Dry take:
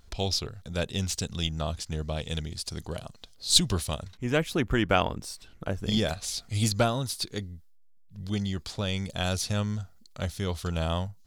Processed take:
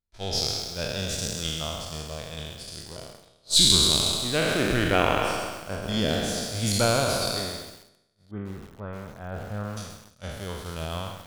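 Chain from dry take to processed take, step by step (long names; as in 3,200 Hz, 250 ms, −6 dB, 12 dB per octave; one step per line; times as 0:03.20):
peak hold with a decay on every bin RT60 2.71 s
0:08.31–0:09.77: low-pass filter 1,600 Hz 24 dB per octave
downward expander −22 dBFS
feedback echo at a low word length 132 ms, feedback 55%, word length 6 bits, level −9 dB
level −3 dB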